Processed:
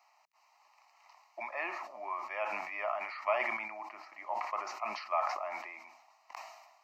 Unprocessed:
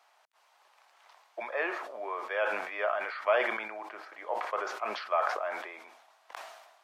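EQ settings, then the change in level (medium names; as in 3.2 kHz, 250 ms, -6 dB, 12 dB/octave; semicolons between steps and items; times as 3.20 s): static phaser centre 2.3 kHz, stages 8; 0.0 dB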